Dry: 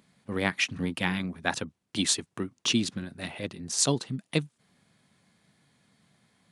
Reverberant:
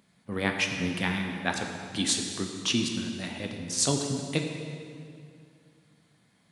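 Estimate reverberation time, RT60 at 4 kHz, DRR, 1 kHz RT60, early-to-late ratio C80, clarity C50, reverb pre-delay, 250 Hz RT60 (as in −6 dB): 2.4 s, 1.9 s, 2.5 dB, 2.3 s, 5.0 dB, 4.0 dB, 12 ms, 2.6 s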